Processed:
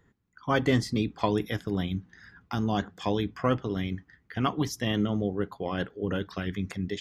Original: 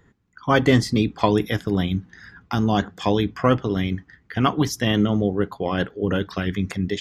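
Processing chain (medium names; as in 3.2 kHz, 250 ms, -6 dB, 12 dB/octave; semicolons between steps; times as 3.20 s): 4.47–4.91 s: band-stop 1.5 kHz, Q 7.8; trim -7.5 dB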